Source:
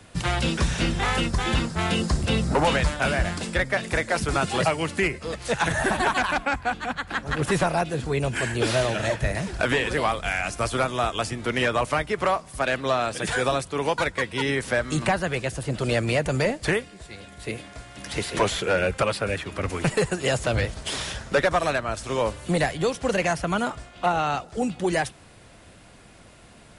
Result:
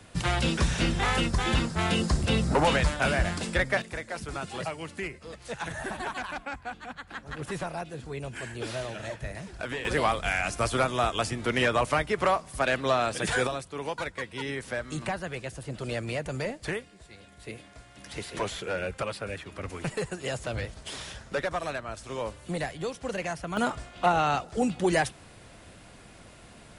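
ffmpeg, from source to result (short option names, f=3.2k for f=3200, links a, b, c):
-af "asetnsamples=n=441:p=0,asendcmd='3.82 volume volume -11.5dB;9.85 volume volume -1.5dB;13.47 volume volume -9dB;23.57 volume volume -0.5dB',volume=-2dB"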